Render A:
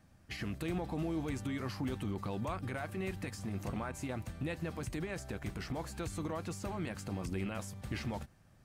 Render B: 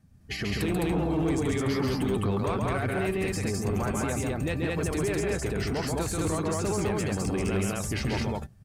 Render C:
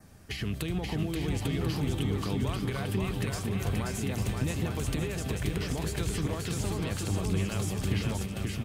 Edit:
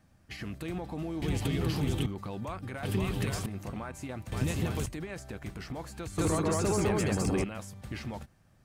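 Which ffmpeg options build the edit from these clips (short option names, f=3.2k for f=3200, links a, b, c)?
-filter_complex "[2:a]asplit=3[a][b][c];[0:a]asplit=5[d][e][f][g][h];[d]atrim=end=1.222[i];[a]atrim=start=1.218:end=2.062[j];[e]atrim=start=2.058:end=2.832[k];[b]atrim=start=2.828:end=3.462[l];[f]atrim=start=3.458:end=4.322[m];[c]atrim=start=4.318:end=4.862[n];[g]atrim=start=4.858:end=6.182[o];[1:a]atrim=start=6.178:end=7.442[p];[h]atrim=start=7.438[q];[i][j]acrossfade=d=0.004:c1=hsin:c2=hsin[r];[r][k]acrossfade=d=0.004:c1=hsin:c2=hsin[s];[s][l]acrossfade=d=0.004:c1=hsin:c2=hsin[t];[t][m]acrossfade=d=0.004:c1=hsin:c2=hsin[u];[u][n]acrossfade=d=0.004:c1=hsin:c2=hsin[v];[v][o]acrossfade=d=0.004:c1=hsin:c2=hsin[w];[w][p]acrossfade=d=0.004:c1=hsin:c2=hsin[x];[x][q]acrossfade=d=0.004:c1=hsin:c2=hsin"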